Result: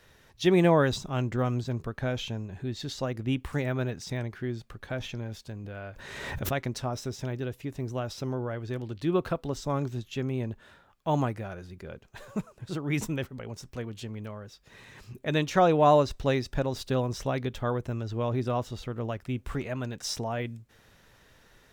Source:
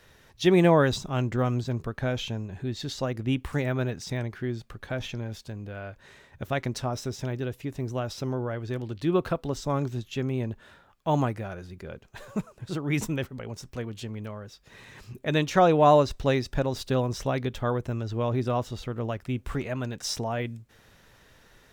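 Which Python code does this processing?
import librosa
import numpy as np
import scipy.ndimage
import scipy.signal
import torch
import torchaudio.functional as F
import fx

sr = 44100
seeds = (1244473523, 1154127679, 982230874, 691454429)

y = fx.pre_swell(x, sr, db_per_s=35.0, at=(5.64, 6.53))
y = y * 10.0 ** (-2.0 / 20.0)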